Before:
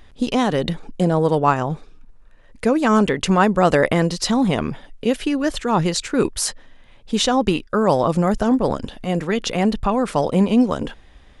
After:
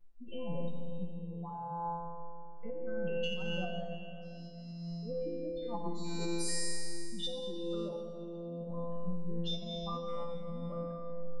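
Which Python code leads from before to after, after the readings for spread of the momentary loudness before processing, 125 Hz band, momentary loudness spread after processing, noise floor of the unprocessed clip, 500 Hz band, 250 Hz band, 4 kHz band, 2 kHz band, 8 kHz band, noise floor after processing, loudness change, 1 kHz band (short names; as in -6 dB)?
9 LU, -18.0 dB, 9 LU, -47 dBFS, -19.0 dB, -22.5 dB, -14.5 dB, -22.0 dB, -15.0 dB, -45 dBFS, -20.0 dB, -21.5 dB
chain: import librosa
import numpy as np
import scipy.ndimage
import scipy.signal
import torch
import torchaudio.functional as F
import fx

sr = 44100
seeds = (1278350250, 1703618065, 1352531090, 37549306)

p1 = fx.spec_expand(x, sr, power=3.6)
p2 = fx.comb_fb(p1, sr, f0_hz=170.0, decay_s=2.0, harmonics='all', damping=0.0, mix_pct=100)
p3 = fx.over_compress(p2, sr, threshold_db=-46.0, ratio=-1.0)
p4 = p3 + fx.room_early_taps(p3, sr, ms=(26, 55), db=(-12.5, -12.0), dry=0)
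p5 = fx.rev_freeverb(p4, sr, rt60_s=2.6, hf_ratio=0.8, predelay_ms=50, drr_db=4.5)
y = p5 * librosa.db_to_amplitude(5.0)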